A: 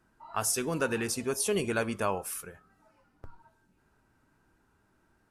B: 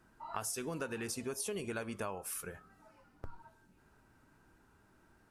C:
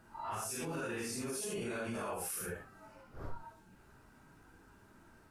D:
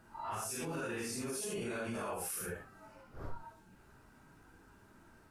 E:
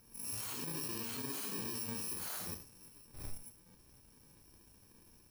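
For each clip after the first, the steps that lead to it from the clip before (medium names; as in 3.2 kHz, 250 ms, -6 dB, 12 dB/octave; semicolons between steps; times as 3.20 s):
compression 5:1, threshold -40 dBFS, peak gain reduction 14.5 dB; trim +2.5 dB
phase randomisation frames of 200 ms; peak limiter -36.5 dBFS, peak gain reduction 9 dB; trim +5.5 dB
no audible change
bit-reversed sample order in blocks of 64 samples; trim -1.5 dB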